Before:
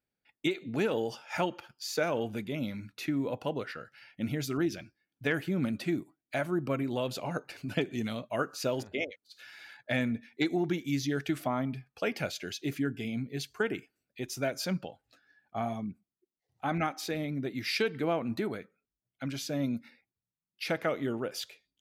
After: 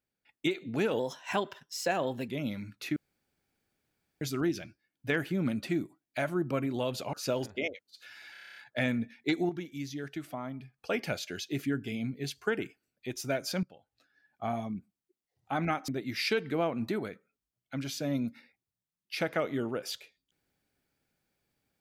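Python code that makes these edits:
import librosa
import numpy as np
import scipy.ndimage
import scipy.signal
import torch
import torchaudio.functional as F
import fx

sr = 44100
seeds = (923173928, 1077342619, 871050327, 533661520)

y = fx.edit(x, sr, fx.speed_span(start_s=0.99, length_s=1.46, speed=1.13),
    fx.room_tone_fill(start_s=3.13, length_s=1.25),
    fx.cut(start_s=7.3, length_s=1.2),
    fx.stutter(start_s=9.69, slice_s=0.03, count=9),
    fx.clip_gain(start_s=10.62, length_s=1.29, db=-7.5),
    fx.fade_in_from(start_s=14.76, length_s=0.86, floor_db=-19.5),
    fx.cut(start_s=17.01, length_s=0.36), tone=tone)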